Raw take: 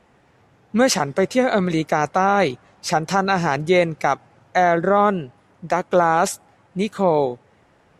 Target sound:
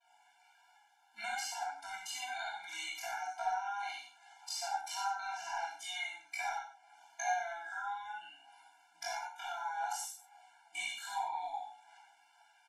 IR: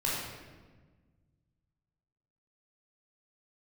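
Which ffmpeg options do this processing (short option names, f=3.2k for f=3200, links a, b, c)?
-filter_complex "[0:a]highpass=f=680:w=0.5412,highpass=f=680:w=1.3066,agate=range=-33dB:threshold=-55dB:ratio=3:detection=peak,highshelf=f=3.4k:g=10.5,alimiter=limit=-9.5dB:level=0:latency=1:release=68,acompressor=threshold=-34dB:ratio=12,aphaser=in_gain=1:out_gain=1:delay=2.4:decay=0.36:speed=0.93:type=sinusoidal,atempo=0.63,aecho=1:1:96:0.266[a];[1:a]atrim=start_sample=2205,atrim=end_sample=3528,asetrate=28665,aresample=44100[b];[a][b]afir=irnorm=-1:irlink=0,afftfilt=real='re*eq(mod(floor(b*sr/1024/340),2),0)':imag='im*eq(mod(floor(b*sr/1024/340),2),0)':win_size=1024:overlap=0.75,volume=-8.5dB"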